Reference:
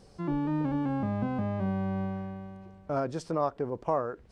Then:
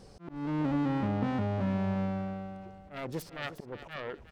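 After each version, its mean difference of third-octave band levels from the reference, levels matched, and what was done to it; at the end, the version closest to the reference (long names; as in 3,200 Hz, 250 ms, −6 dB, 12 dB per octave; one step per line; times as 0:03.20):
5.5 dB: phase distortion by the signal itself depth 0.6 ms
volume swells 338 ms
in parallel at −3 dB: brickwall limiter −31 dBFS, peak gain reduction 11 dB
on the sum: repeating echo 358 ms, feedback 24%, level −13 dB
level −2 dB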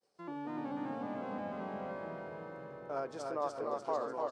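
7.5 dB: high-pass filter 400 Hz 12 dB per octave
downward expander −52 dBFS
repeating echo 295 ms, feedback 54%, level −3.5 dB
delay with pitch and tempo change per echo 133 ms, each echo −3 semitones, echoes 3, each echo −6 dB
level −6.5 dB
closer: first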